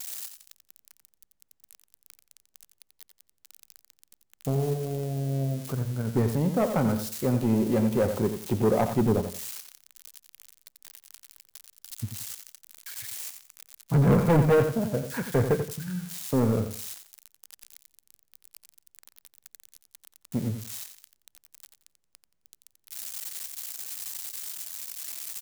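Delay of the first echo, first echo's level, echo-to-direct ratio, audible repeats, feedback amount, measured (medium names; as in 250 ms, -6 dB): 88 ms, -9.0 dB, -8.5 dB, 3, 25%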